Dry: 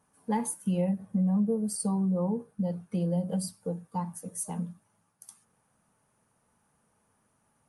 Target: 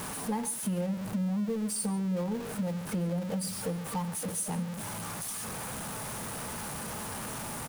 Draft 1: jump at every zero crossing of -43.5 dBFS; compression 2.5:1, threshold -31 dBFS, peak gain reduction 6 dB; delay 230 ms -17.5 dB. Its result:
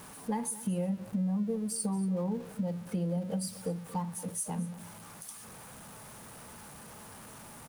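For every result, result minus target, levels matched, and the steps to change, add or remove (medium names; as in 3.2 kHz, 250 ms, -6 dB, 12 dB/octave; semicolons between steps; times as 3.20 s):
echo 88 ms late; jump at every zero crossing: distortion -10 dB
change: delay 142 ms -17.5 dB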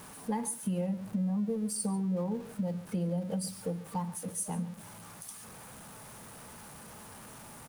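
jump at every zero crossing: distortion -10 dB
change: jump at every zero crossing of -32 dBFS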